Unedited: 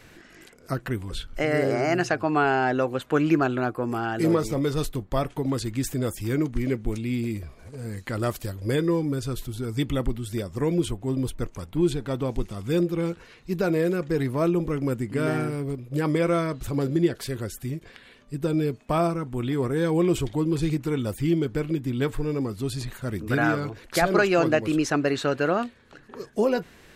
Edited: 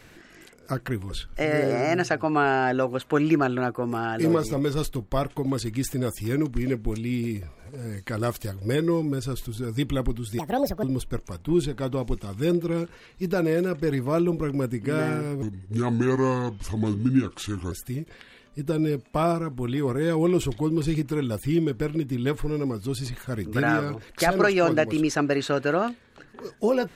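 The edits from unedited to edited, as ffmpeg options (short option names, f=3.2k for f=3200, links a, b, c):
-filter_complex "[0:a]asplit=5[a][b][c][d][e];[a]atrim=end=10.394[f];[b]atrim=start=10.39:end=11.11,asetpts=PTS-STARTPTS,asetrate=71883,aresample=44100[g];[c]atrim=start=11.106:end=15.704[h];[d]atrim=start=15.7:end=17.47,asetpts=PTS-STARTPTS,asetrate=33957,aresample=44100[i];[e]atrim=start=17.466[j];[f][g]acrossfade=d=0.004:c1=hsin:c2=hsin[k];[k][h]acrossfade=d=0.004:c1=hsin:c2=hsin[l];[l][i]acrossfade=d=0.004:c1=hsin:c2=hsin[m];[m][j]acrossfade=d=0.004:c1=hsin:c2=hsin"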